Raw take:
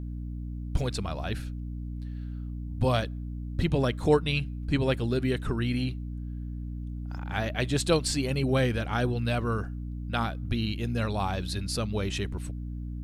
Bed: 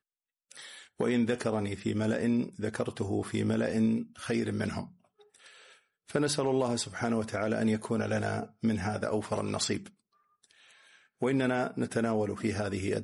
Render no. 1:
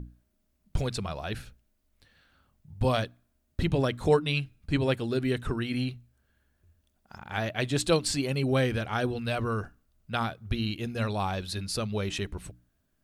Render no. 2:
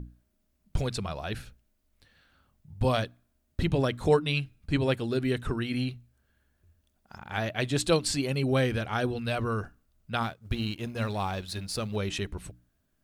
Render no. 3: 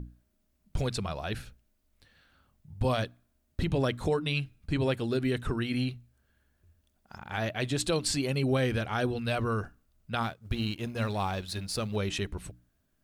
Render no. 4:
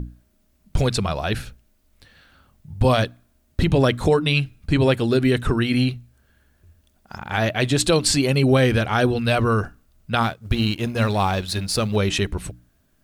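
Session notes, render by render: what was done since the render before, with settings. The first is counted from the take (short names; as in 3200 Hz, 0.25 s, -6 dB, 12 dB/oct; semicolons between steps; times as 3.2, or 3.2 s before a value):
notches 60/120/180/240/300 Hz
10.23–11.96 G.711 law mismatch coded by A
limiter -18.5 dBFS, peak gain reduction 7.5 dB
gain +10.5 dB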